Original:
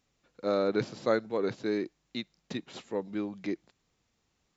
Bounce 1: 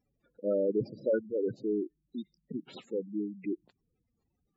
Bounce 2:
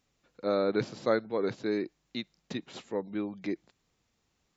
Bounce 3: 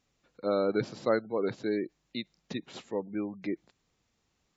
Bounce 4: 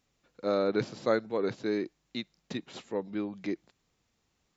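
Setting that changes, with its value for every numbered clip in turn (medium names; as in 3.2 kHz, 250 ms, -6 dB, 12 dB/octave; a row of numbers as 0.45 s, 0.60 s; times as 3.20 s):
spectral gate, under each frame's peak: -10 dB, -45 dB, -30 dB, -55 dB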